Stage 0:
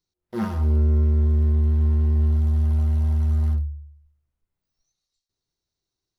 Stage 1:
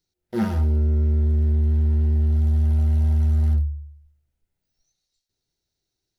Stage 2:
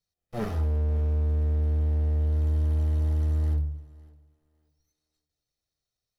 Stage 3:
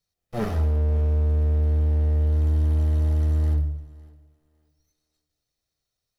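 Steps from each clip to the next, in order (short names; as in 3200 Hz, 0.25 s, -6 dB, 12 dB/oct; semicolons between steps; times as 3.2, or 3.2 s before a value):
bell 1100 Hz -14.5 dB 0.22 oct; limiter -17 dBFS, peak gain reduction 5.5 dB; gain +3.5 dB
minimum comb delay 1.6 ms; thinning echo 0.556 s, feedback 24%, high-pass 150 Hz, level -21 dB; gain -5 dB
reverb, pre-delay 80 ms, DRR 14.5 dB; gain +4 dB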